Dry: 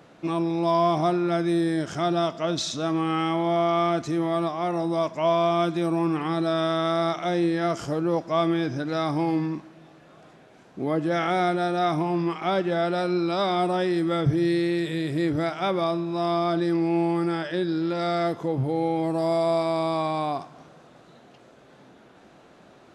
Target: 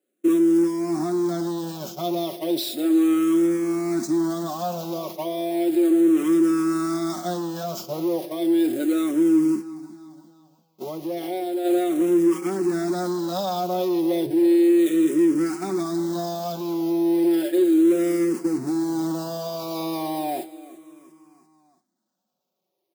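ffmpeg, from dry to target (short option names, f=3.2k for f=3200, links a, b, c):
-filter_complex "[0:a]aeval=exprs='val(0)+0.5*0.0422*sgn(val(0))':c=same,agate=range=-47dB:threshold=-27dB:ratio=16:detection=peak,alimiter=limit=-17dB:level=0:latency=1:release=264,equalizer=f=2k:t=o:w=2.4:g=-7.5,aecho=1:1:5.4:0.68,aecho=1:1:343|686|1029|1372:0.126|0.0655|0.034|0.0177,asoftclip=type=tanh:threshold=-18dB,asplit=3[a][b][c];[a]afade=t=out:st=9.54:d=0.02[d];[b]acompressor=threshold=-28dB:ratio=4,afade=t=in:st=9.54:d=0.02,afade=t=out:st=11.64:d=0.02[e];[c]afade=t=in:st=11.64:d=0.02[f];[d][e][f]amix=inputs=3:normalize=0,highpass=f=280:t=q:w=3.4,highshelf=f=4.9k:g=8.5,asplit=2[g][h];[h]afreqshift=-0.34[i];[g][i]amix=inputs=2:normalize=1"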